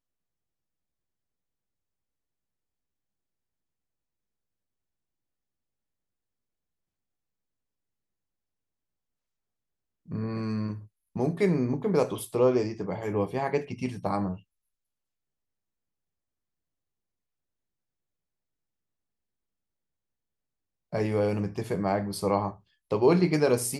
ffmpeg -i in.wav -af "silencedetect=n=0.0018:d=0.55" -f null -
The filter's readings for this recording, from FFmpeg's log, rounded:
silence_start: 0.00
silence_end: 10.06 | silence_duration: 10.06
silence_start: 14.42
silence_end: 20.92 | silence_duration: 6.50